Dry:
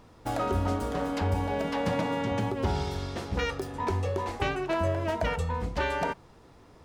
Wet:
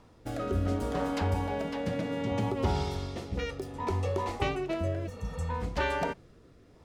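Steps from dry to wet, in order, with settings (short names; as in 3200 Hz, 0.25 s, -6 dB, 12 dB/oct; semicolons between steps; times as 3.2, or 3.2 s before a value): 2.2–4.92 notch 1600 Hz, Q 7.5; 5.09–5.42 spectral repair 220–5300 Hz after; rotary speaker horn 0.65 Hz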